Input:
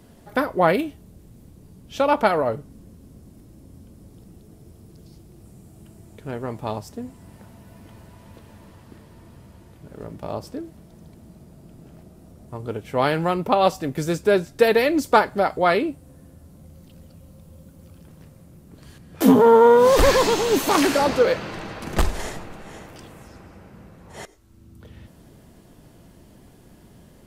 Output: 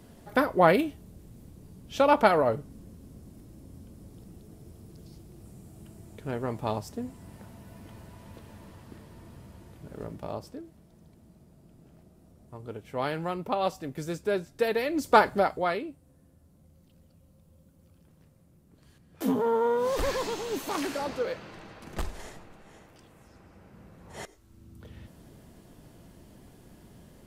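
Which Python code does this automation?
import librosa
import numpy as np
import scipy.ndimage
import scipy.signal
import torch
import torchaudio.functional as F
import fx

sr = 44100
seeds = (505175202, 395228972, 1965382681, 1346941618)

y = fx.gain(x, sr, db=fx.line((10.01, -2.0), (10.63, -10.0), (14.88, -10.0), (15.27, -0.5), (15.83, -13.0), (23.06, -13.0), (24.22, -3.0)))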